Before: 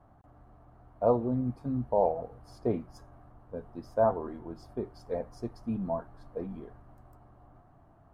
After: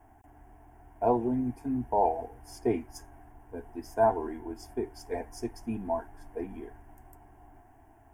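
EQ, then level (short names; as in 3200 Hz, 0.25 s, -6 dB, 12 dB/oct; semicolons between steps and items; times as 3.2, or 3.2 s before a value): high shelf 2300 Hz +12 dB; dynamic EQ 4800 Hz, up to +5 dB, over -52 dBFS, Q 0.93; fixed phaser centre 820 Hz, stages 8; +4.0 dB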